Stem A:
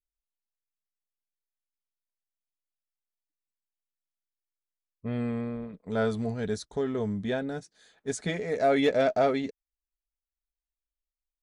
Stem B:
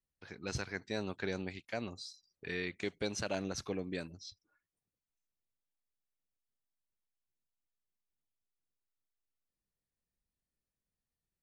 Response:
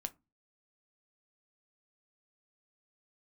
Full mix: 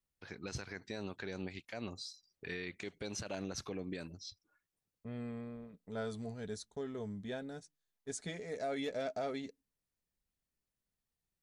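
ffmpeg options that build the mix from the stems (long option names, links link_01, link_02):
-filter_complex "[0:a]agate=range=-25dB:threshold=-46dB:ratio=16:detection=peak,adynamicequalizer=threshold=0.00447:dfrequency=3500:dqfactor=0.7:tfrequency=3500:tqfactor=0.7:attack=5:release=100:ratio=0.375:range=4:mode=boostabove:tftype=highshelf,volume=-13dB,asplit=2[link_01][link_02];[link_02]volume=-15.5dB[link_03];[1:a]volume=1dB[link_04];[2:a]atrim=start_sample=2205[link_05];[link_03][link_05]afir=irnorm=-1:irlink=0[link_06];[link_01][link_04][link_06]amix=inputs=3:normalize=0,alimiter=level_in=6dB:limit=-24dB:level=0:latency=1:release=92,volume=-6dB"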